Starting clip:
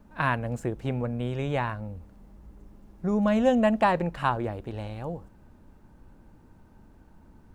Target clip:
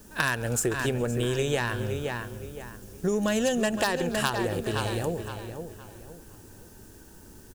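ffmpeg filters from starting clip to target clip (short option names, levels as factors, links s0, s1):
-filter_complex "[0:a]equalizer=f=100:t=o:w=0.67:g=5,equalizer=f=400:t=o:w=0.67:g=11,equalizer=f=1600:t=o:w=0.67:g=7,equalizer=f=4000:t=o:w=0.67:g=-7,aeval=exprs='0.335*(cos(1*acos(clip(val(0)/0.335,-1,1)))-cos(1*PI/2))+0.00531*(cos(6*acos(clip(val(0)/0.335,-1,1)))-cos(6*PI/2))':c=same,asplit=2[s0][s1];[s1]adelay=515,lowpass=f=3200:p=1,volume=0.335,asplit=2[s2][s3];[s3]adelay=515,lowpass=f=3200:p=1,volume=0.33,asplit=2[s4][s5];[s5]adelay=515,lowpass=f=3200:p=1,volume=0.33,asplit=2[s6][s7];[s7]adelay=515,lowpass=f=3200:p=1,volume=0.33[s8];[s2][s4][s6][s8]amix=inputs=4:normalize=0[s9];[s0][s9]amix=inputs=2:normalize=0,aexciter=amount=7.1:drive=9.3:freq=3000,equalizer=f=1800:t=o:w=0.27:g=9.5,asplit=2[s10][s11];[s11]asplit=4[s12][s13][s14][s15];[s12]adelay=136,afreqshift=-98,volume=0.075[s16];[s13]adelay=272,afreqshift=-196,volume=0.0437[s17];[s14]adelay=408,afreqshift=-294,volume=0.0251[s18];[s15]adelay=544,afreqshift=-392,volume=0.0146[s19];[s16][s17][s18][s19]amix=inputs=4:normalize=0[s20];[s10][s20]amix=inputs=2:normalize=0,acompressor=threshold=0.0708:ratio=5"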